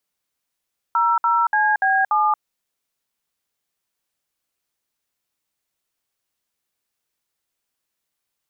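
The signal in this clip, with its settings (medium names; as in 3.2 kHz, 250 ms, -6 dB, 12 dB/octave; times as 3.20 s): DTMF "00CB7", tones 229 ms, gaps 61 ms, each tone -17.5 dBFS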